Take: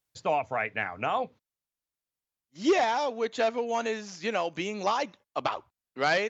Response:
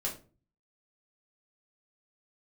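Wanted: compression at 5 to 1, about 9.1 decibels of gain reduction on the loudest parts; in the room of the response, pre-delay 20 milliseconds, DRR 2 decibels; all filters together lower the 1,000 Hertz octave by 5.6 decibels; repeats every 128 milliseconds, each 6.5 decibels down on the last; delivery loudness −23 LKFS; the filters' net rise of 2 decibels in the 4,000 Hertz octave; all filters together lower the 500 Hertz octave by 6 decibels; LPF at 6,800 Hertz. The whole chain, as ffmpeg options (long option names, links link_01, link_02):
-filter_complex "[0:a]lowpass=6800,equalizer=frequency=500:width_type=o:gain=-6.5,equalizer=frequency=1000:width_type=o:gain=-5,equalizer=frequency=4000:width_type=o:gain=3.5,acompressor=threshold=-32dB:ratio=5,aecho=1:1:128|256|384|512|640|768:0.473|0.222|0.105|0.0491|0.0231|0.0109,asplit=2[link_01][link_02];[1:a]atrim=start_sample=2205,adelay=20[link_03];[link_02][link_03]afir=irnorm=-1:irlink=0,volume=-5dB[link_04];[link_01][link_04]amix=inputs=2:normalize=0,volume=11dB"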